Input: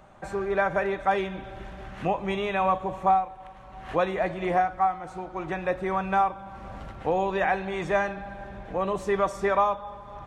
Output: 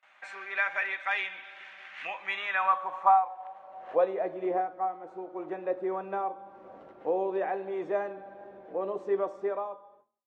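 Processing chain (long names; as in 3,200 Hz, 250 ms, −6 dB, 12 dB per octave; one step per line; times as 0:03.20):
fade-out on the ending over 1.12 s
noise gate with hold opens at −44 dBFS
notch filter 420 Hz, Q 12
hum removal 112.3 Hz, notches 11
tape wow and flutter 21 cents
RIAA equalisation recording
band-pass filter sweep 2,200 Hz → 400 Hz, 0:02.12–0:04.29
high-frequency loss of the air 72 metres
level +5 dB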